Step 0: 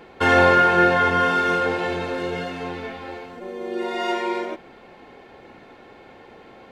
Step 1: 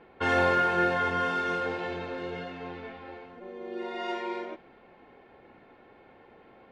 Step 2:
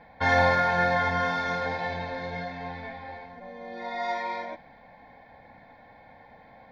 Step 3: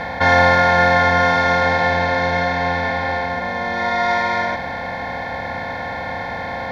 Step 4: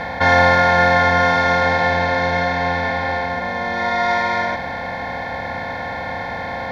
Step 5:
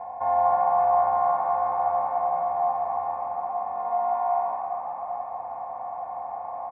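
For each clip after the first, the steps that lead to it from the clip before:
level-controlled noise filter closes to 2.7 kHz, open at -12 dBFS; trim -9 dB
static phaser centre 1.9 kHz, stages 8; trim +7 dB
spectral levelling over time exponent 0.4; trim +6 dB
no audible change
cascade formant filter a; frequency-shifting echo 243 ms, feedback 34%, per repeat +66 Hz, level -7 dB; reverberation RT60 3.0 s, pre-delay 110 ms, DRR 7 dB; trim -1 dB

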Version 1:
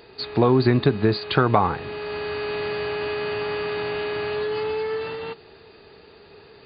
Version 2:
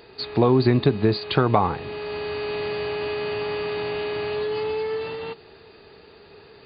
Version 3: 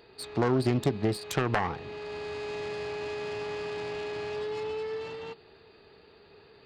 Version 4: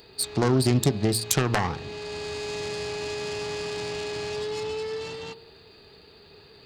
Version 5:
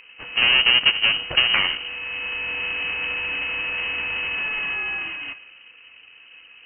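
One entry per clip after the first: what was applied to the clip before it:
dynamic bell 1.5 kHz, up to -5 dB, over -43 dBFS, Q 2.2
self-modulated delay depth 0.44 ms; trim -7.5 dB
tone controls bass +5 dB, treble +15 dB; de-hum 114.2 Hz, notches 16; trim +2 dB
square wave that keeps the level; level-controlled noise filter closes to 1.5 kHz, open at -17 dBFS; frequency inversion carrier 3 kHz

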